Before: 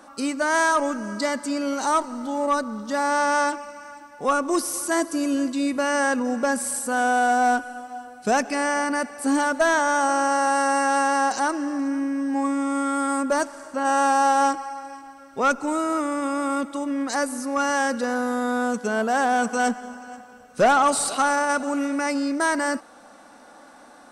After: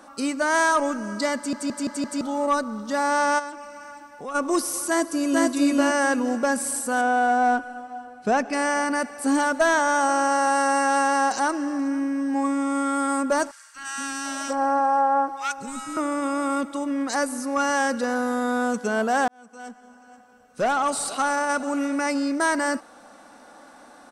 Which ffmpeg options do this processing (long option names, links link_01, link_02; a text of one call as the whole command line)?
ffmpeg -i in.wav -filter_complex "[0:a]asplit=3[link_01][link_02][link_03];[link_01]afade=type=out:start_time=3.38:duration=0.02[link_04];[link_02]acompressor=threshold=-36dB:ratio=2.5:attack=3.2:release=140:knee=1:detection=peak,afade=type=in:start_time=3.38:duration=0.02,afade=type=out:start_time=4.34:duration=0.02[link_05];[link_03]afade=type=in:start_time=4.34:duration=0.02[link_06];[link_04][link_05][link_06]amix=inputs=3:normalize=0,asplit=2[link_07][link_08];[link_08]afade=type=in:start_time=4.88:duration=0.01,afade=type=out:start_time=5.45:duration=0.01,aecho=0:1:450|900|1350|1800:0.944061|0.283218|0.0849655|0.0254896[link_09];[link_07][link_09]amix=inputs=2:normalize=0,asettb=1/sr,asplit=3[link_10][link_11][link_12];[link_10]atrim=end=7.014[link_13];[link_11]atrim=start=7.01:end=8.53,asetpts=PTS-STARTPTS,afade=type=in:duration=0.004:curve=qsin,afade=type=out:start_time=1.516:duration=0.004:curve=qsin,lowpass=frequency=2300:poles=1[link_14];[link_12]atrim=start=8.526[link_15];[link_13][link_14]acrossfade=duration=0.004:curve1=hsin:curve2=qsin[link_16];[link_16][link_15]acrossfade=duration=0.004:curve1=qsin:curve2=hsin,asettb=1/sr,asplit=3[link_17][link_18][link_19];[link_17]atrim=end=13.514[link_20];[link_18]atrim=start=13.51:end=15.97,asetpts=PTS-STARTPTS,afade=type=in:duration=0.004:curve=qsin,afade=type=out:start_time=2.456:duration=0.004:curve=qsin,acrossover=split=270|1500[link_21][link_22][link_23];[link_21]adelay=240[link_24];[link_22]adelay=740[link_25];[link_24][link_25][link_23]amix=inputs=3:normalize=0,atrim=end_sample=108486[link_26];[link_19]atrim=start=15.966[link_27];[link_20][link_26]acrossfade=duration=0.004:curve1=hsin:curve2=qsin[link_28];[link_28][link_27]acrossfade=duration=0.004:curve1=qsin:curve2=hsin,asplit=7[link_29][link_30][link_31][link_32][link_33][link_34][link_35];[link_29]atrim=end=1.532[link_36];[link_30]atrim=start=1.358:end=1.532[link_37];[link_31]atrim=start=1.358:end=1.532[link_38];[link_32]atrim=start=1.358:end=1.532[link_39];[link_33]atrim=start=1.358:end=1.532[link_40];[link_34]atrim=start=2.208:end=19.28,asetpts=PTS-STARTPTS,afade=type=out:start_time=17.068:duration=0.004:curve=hsin[link_41];[link_35]atrim=start=19.28,asetpts=PTS-STARTPTS,afade=type=in:duration=2.65[link_42];[link_36][link_37]acrossfade=duration=0.004:curve1=hsin:curve2=hsin[link_43];[link_43][link_38]acrossfade=duration=0.004:curve1=hsin:curve2=hsin[link_44];[link_44][link_39]acrossfade=duration=0.004:curve1=hsin:curve2=hsin[link_45];[link_45][link_40]acrossfade=duration=0.004:curve1=hsin:curve2=hsin[link_46];[link_41][link_42]concat=n=2:v=0:a=1[link_47];[link_46][link_47]acrossfade=duration=0.004:curve1=hsin:curve2=hsin" out.wav